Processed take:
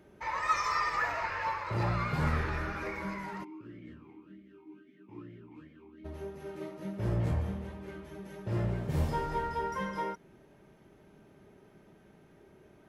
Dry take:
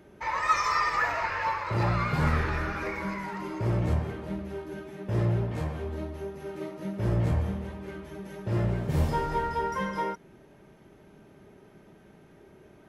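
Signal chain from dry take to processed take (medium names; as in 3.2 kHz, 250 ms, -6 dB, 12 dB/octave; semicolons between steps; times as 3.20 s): 3.43–6.04 s: talking filter i-u 1.3 Hz -> 3.3 Hz; trim -4.5 dB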